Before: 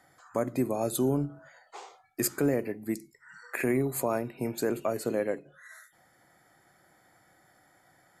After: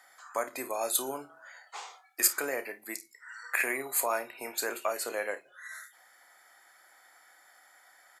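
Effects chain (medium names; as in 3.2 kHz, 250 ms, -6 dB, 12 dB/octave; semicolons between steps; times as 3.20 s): high-pass 980 Hz 12 dB/octave; early reflections 30 ms -12 dB, 53 ms -17.5 dB; trim +6 dB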